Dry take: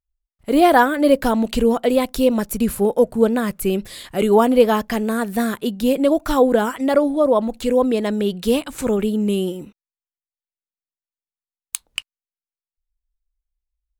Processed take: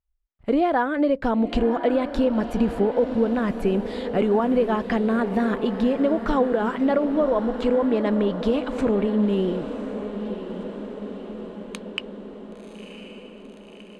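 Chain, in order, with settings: Bessel low-pass 2.2 kHz, order 2; compression 6:1, threshold -20 dBFS, peak gain reduction 12 dB; echo that smears into a reverb 1049 ms, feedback 63%, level -10 dB; trim +2 dB

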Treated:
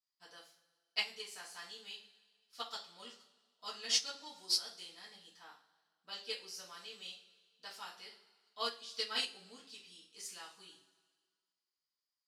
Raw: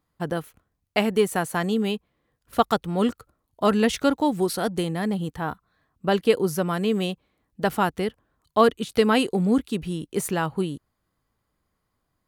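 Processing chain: band-pass filter 5 kHz, Q 4.4; two-slope reverb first 0.37 s, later 1.7 s, from -18 dB, DRR -9 dB; upward expansion 2.5:1, over -37 dBFS; trim +2.5 dB

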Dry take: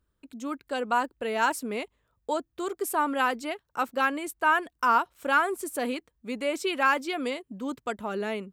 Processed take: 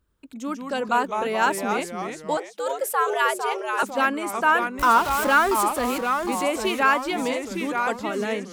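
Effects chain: 4.79–5.64 s: jump at every zero crossing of -29 dBFS; ever faster or slower copies 94 ms, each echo -2 st, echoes 3, each echo -6 dB; 2.37–3.83 s: frequency shift +140 Hz; trim +3.5 dB

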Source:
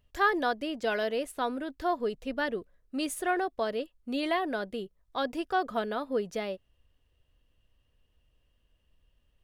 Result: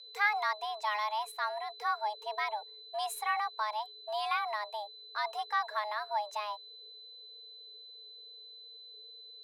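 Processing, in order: whistle 3.6 kHz -45 dBFS; frequency shift +420 Hz; trim -3.5 dB

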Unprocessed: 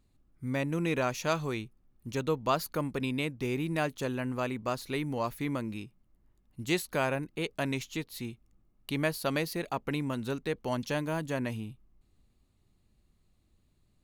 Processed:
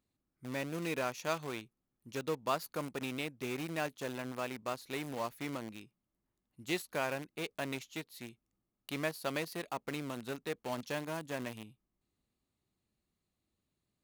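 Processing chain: in parallel at -6 dB: bit crusher 5-bit; on the sum: high-pass 210 Hz 6 dB/octave; trim -8.5 dB

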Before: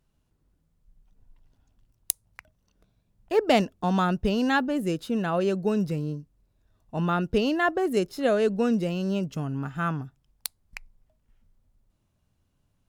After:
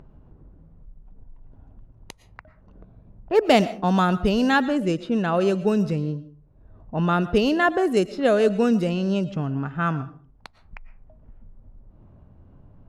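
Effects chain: level-controlled noise filter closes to 880 Hz, open at -20 dBFS; upward compressor, threshold -37 dBFS; algorithmic reverb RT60 0.43 s, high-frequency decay 0.45×, pre-delay 75 ms, DRR 15.5 dB; trim +4 dB

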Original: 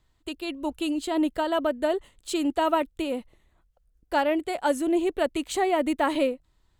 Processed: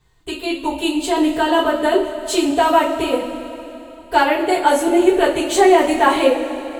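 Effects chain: two-slope reverb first 0.27 s, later 3.2 s, from -18 dB, DRR -9 dB; trim +2 dB

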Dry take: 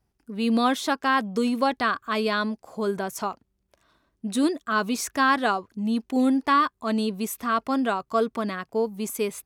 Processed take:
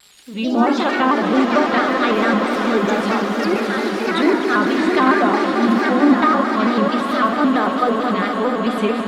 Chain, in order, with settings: zero-crossing glitches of -28.5 dBFS; steep low-pass 11 kHz; resonant high shelf 4.7 kHz -9 dB, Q 3; low-pass that closes with the level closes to 1 kHz, closed at -18 dBFS; level rider gain up to 6 dB; whistle 6.9 kHz -51 dBFS; ever faster or slower copies 136 ms, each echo +4 st, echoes 3, each echo -6 dB; echo with a slow build-up 81 ms, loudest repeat 8, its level -13.5 dB; simulated room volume 920 m³, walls mixed, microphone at 1 m; speed mistake 24 fps film run at 25 fps; vibrato with a chosen wave square 4.5 Hz, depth 100 cents; trim -1 dB

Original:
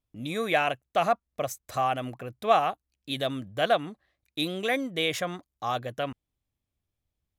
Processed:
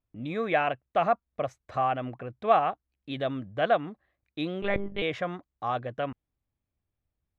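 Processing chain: low-pass 2.2 kHz 12 dB/octave; 4.62–5.02 s: monotone LPC vocoder at 8 kHz 200 Hz

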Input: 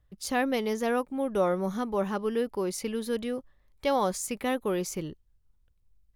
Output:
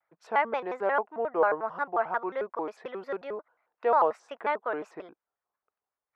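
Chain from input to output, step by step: Butterworth band-pass 990 Hz, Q 1; vibrato with a chosen wave square 5.6 Hz, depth 250 cents; trim +6 dB

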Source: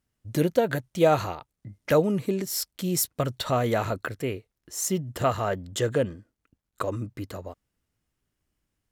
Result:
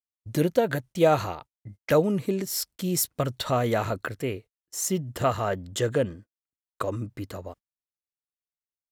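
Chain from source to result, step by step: gate -44 dBFS, range -36 dB

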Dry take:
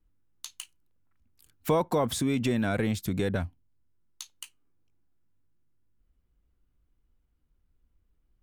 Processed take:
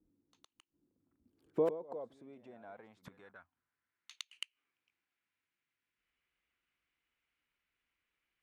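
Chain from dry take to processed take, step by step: pre-echo 112 ms -13 dB; inverted gate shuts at -23 dBFS, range -26 dB; band-pass sweep 300 Hz -> 2.3 kHz, 1.17–4.25 s; trim +11 dB

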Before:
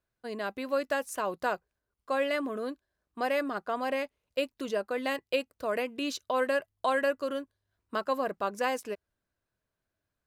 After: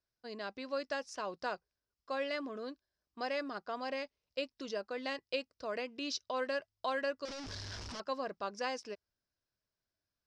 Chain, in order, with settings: 7.25–8.00 s: one-bit comparator; four-pole ladder low-pass 5.7 kHz, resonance 70%; trim +3.5 dB

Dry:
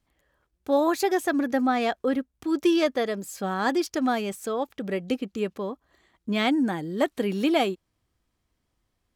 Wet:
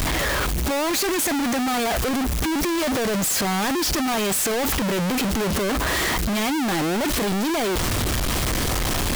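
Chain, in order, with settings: one-bit comparator; trim +4.5 dB

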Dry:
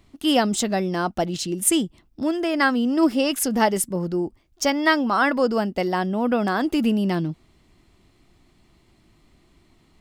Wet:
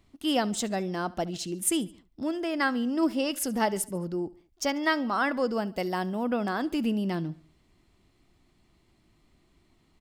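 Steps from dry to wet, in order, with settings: 5.67–6.24 s: treble shelf 7.6 kHz +10.5 dB; feedback delay 71 ms, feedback 49%, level -21.5 dB; trim -7 dB

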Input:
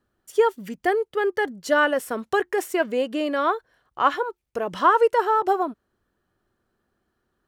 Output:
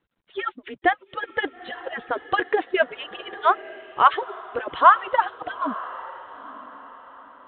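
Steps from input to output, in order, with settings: harmonic-percussive separation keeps percussive; echo that smears into a reverb 914 ms, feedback 41%, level -16 dB; trim +5 dB; G.726 40 kbps 8 kHz

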